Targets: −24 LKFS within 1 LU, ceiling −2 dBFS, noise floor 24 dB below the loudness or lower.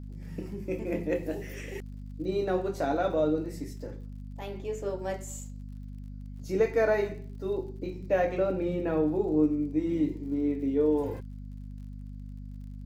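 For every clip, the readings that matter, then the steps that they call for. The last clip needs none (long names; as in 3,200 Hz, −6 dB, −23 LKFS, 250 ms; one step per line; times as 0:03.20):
crackle rate 54 per second; mains hum 50 Hz; hum harmonics up to 250 Hz; level of the hum −38 dBFS; integrated loudness −30.0 LKFS; sample peak −13.5 dBFS; target loudness −24.0 LKFS
→ click removal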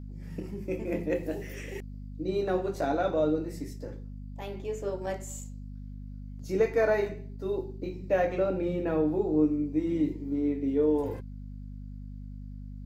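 crackle rate 0.078 per second; mains hum 50 Hz; hum harmonics up to 250 Hz; level of the hum −39 dBFS
→ hum removal 50 Hz, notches 5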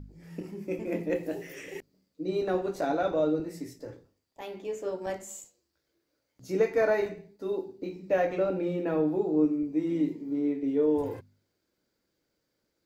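mains hum none found; integrated loudness −30.0 LKFS; sample peak −13.0 dBFS; target loudness −24.0 LKFS
→ level +6 dB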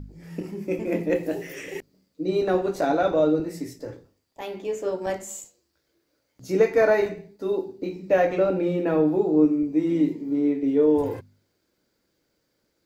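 integrated loudness −24.0 LKFS; sample peak −7.0 dBFS; background noise floor −74 dBFS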